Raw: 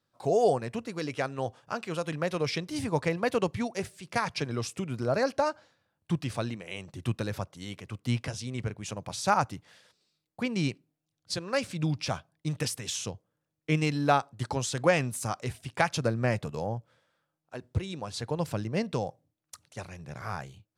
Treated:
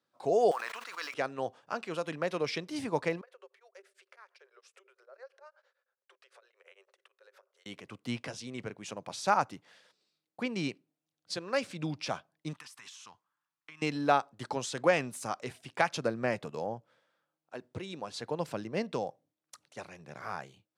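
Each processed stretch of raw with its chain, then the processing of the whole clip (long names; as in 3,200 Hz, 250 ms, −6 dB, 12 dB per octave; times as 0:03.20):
0:00.51–0:01.14: log-companded quantiser 6 bits + high-pass with resonance 1,200 Hz, resonance Q 2.2 + level that may fall only so fast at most 33 dB per second
0:03.21–0:07.66: downward compressor 4 to 1, threshold −44 dBFS + Chebyshev high-pass with heavy ripple 380 Hz, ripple 9 dB + tremolo along a rectified sine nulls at 8.9 Hz
0:12.53–0:13.82: low shelf with overshoot 740 Hz −12 dB, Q 3 + downward compressor 12 to 1, threshold −42 dBFS + saturating transformer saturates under 670 Hz
whole clip: high-pass filter 230 Hz 12 dB per octave; high-shelf EQ 7,100 Hz −8.5 dB; level −1.5 dB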